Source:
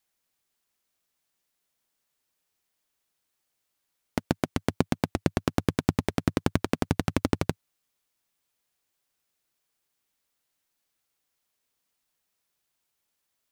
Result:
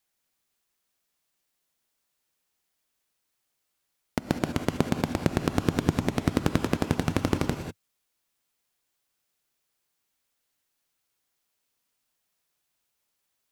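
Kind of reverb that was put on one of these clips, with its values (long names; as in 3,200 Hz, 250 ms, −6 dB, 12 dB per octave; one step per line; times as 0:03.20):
reverb whose tail is shaped and stops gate 220 ms rising, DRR 6 dB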